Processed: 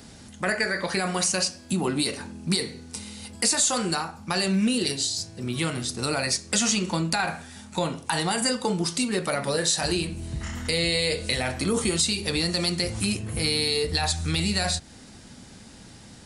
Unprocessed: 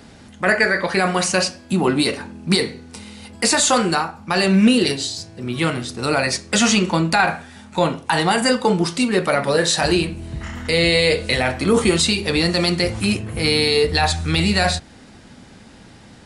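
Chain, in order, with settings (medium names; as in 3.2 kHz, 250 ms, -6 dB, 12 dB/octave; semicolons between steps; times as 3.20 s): tone controls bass +3 dB, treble +10 dB; compression 2:1, threshold -20 dBFS, peak gain reduction 8 dB; trim -5 dB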